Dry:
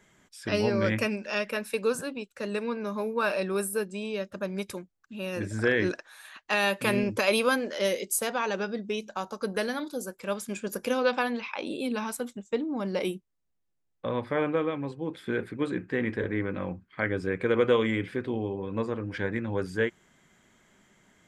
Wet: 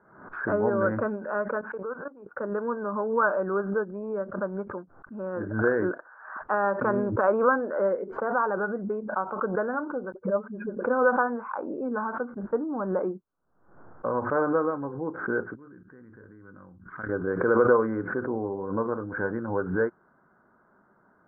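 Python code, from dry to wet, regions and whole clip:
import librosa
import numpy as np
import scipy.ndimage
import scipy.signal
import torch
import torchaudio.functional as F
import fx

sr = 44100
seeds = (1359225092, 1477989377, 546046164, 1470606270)

y = fx.chain(x, sr, fx.highpass(hz=320.0, slope=6),
    fx.level_steps(step_db=17), at=(1.61, 2.36))
y = fx.chain(y, sr, fx.spec_expand(power=1.8),
    fx.dispersion(late='highs', ms=45.0, hz=310.0),
    fx.band_widen(depth_pct=100), at=(10.12, 10.84))
y = fx.chain(y, sr, fx.peak_eq(hz=640.0, db=-15.0, octaves=2.2),
    fx.level_steps(step_db=16), at=(15.55, 17.09))
y = scipy.signal.sosfilt(scipy.signal.cheby1(6, 1.0, 1500.0, 'lowpass', fs=sr, output='sos'), y)
y = fx.tilt_eq(y, sr, slope=3.0)
y = fx.pre_swell(y, sr, db_per_s=78.0)
y = F.gain(torch.from_numpy(y), 5.5).numpy()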